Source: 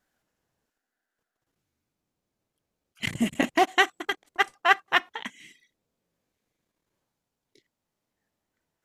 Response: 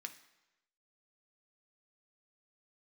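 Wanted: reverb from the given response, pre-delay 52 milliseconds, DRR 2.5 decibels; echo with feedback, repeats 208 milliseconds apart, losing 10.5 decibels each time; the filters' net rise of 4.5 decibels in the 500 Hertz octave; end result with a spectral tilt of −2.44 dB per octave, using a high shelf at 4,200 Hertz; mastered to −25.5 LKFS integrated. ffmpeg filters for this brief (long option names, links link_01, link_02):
-filter_complex "[0:a]equalizer=frequency=500:width_type=o:gain=7,highshelf=frequency=4200:gain=6.5,aecho=1:1:208|416|624:0.299|0.0896|0.0269,asplit=2[link_01][link_02];[1:a]atrim=start_sample=2205,adelay=52[link_03];[link_02][link_03]afir=irnorm=-1:irlink=0,volume=0.5dB[link_04];[link_01][link_04]amix=inputs=2:normalize=0,volume=-4dB"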